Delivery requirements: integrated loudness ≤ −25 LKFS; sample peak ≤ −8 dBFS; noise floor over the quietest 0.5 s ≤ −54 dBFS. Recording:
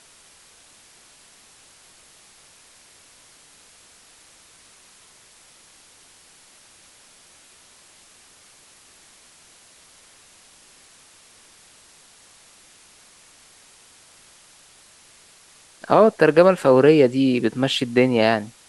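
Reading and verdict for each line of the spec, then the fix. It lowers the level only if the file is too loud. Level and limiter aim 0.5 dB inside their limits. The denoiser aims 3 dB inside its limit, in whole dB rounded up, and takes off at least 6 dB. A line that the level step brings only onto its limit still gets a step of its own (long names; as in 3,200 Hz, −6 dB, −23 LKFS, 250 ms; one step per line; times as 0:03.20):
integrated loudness −17.0 LKFS: out of spec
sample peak −2.5 dBFS: out of spec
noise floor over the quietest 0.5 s −52 dBFS: out of spec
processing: level −8.5 dB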